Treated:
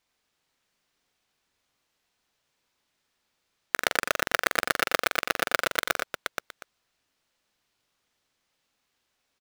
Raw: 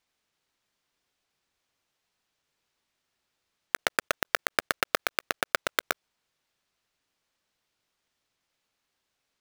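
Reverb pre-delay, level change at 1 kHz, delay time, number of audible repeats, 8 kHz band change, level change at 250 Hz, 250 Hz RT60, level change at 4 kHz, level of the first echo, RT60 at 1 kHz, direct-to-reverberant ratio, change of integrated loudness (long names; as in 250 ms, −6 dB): no reverb audible, +3.0 dB, 44 ms, 4, +3.0 dB, +3.5 dB, no reverb audible, +3.5 dB, −7.0 dB, no reverb audible, no reverb audible, +3.0 dB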